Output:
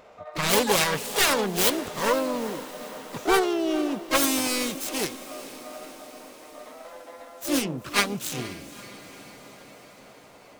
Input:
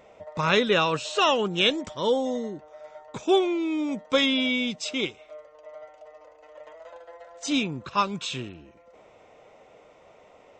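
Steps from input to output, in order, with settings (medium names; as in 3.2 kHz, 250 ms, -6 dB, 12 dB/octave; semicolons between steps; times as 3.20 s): self-modulated delay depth 0.8 ms; echo that smears into a reverb 462 ms, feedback 65%, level -15.5 dB; harmony voices +3 st -7 dB, +12 st -8 dB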